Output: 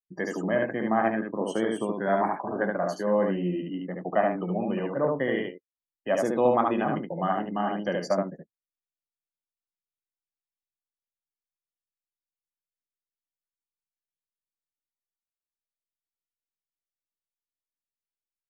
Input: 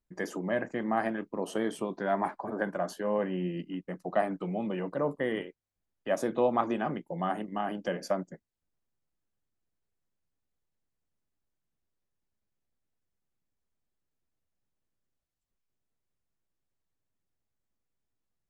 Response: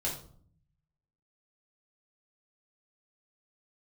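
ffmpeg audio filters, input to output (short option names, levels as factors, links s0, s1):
-af "afftdn=nr=30:nf=-48,aecho=1:1:15|73:0.2|0.708,volume=1.41"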